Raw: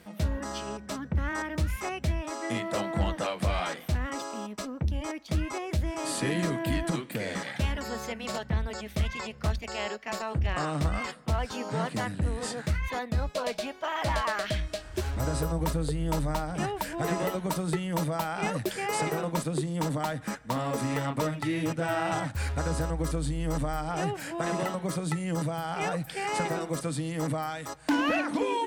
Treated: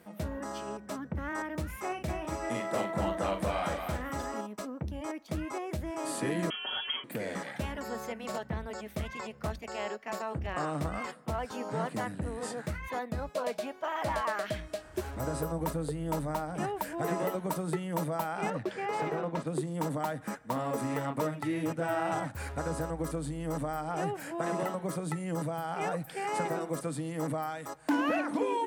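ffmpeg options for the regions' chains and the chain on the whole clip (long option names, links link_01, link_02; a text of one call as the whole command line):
ffmpeg -i in.wav -filter_complex "[0:a]asettb=1/sr,asplit=3[link_01][link_02][link_03];[link_01]atrim=end=1.854[link_04];[link_02]atrim=start=1.85:end=4.41,asetpts=PTS-STARTPTS,afade=type=in:duration=0.004:curve=qsin,afade=type=out:start_time=2.556:duration=0.004:curve=qsin,asplit=2[link_05][link_06];[link_06]adelay=41,volume=-7dB[link_07];[link_05][link_07]amix=inputs=2:normalize=0,atrim=end_sample=112896,aecho=1:1:241:0.531,atrim=end_sample=112896[link_08];[link_03]atrim=start=4.406[link_09];[link_04][link_08]acrossfade=duration=0.004:curve1=hsin:curve2=qsin[link_10];[link_10][link_09]acrossfade=duration=0.004:curve1=qsin:curve2=hsin,asettb=1/sr,asplit=3[link_11][link_12][link_13];[link_11]atrim=end=6.504[link_14];[link_12]atrim=start=6.5:end=7.04,asetpts=PTS-STARTPTS,afade=type=in:duration=0.004:curve=qsin,afade=type=out:start_time=0.536:duration=0.004:curve=qsin,equalizer=frequency=440:width_type=o:width=1.8:gain=-5,aecho=1:1:5.7:0.96,atrim=end_sample=23814,lowpass=frequency=2900:width_type=q:width=0.5098,lowpass=frequency=2900:width_type=q:width=0.6013,lowpass=frequency=2900:width_type=q:width=0.9,lowpass=frequency=2900:width_type=q:width=2.563,afreqshift=-3400[link_15];[link_13]atrim=start=7.036[link_16];[link_14][link_15]acrossfade=duration=0.004:curve1=hsin:curve2=qsin[link_17];[link_17][link_16]acrossfade=duration=0.004:curve1=qsin:curve2=hsin,asettb=1/sr,asplit=3[link_18][link_19][link_20];[link_18]atrim=end=18.504[link_21];[link_19]atrim=start=18.5:end=19.47,asetpts=PTS-STARTPTS,afade=type=in:duration=0.004:curve=qsin,afade=type=out:start_time=0.966:duration=0.004:curve=qsin,lowpass=4200,asoftclip=type=hard:threshold=-24.5dB[link_22];[link_20]atrim=start=19.466[link_23];[link_21][link_22]acrossfade=duration=0.004:curve1=hsin:curve2=qsin[link_24];[link_24][link_23]acrossfade=duration=0.004:curve1=qsin:curve2=hsin,highpass=frequency=230:poles=1,equalizer=frequency=4100:width_type=o:width=2.3:gain=-9" out.wav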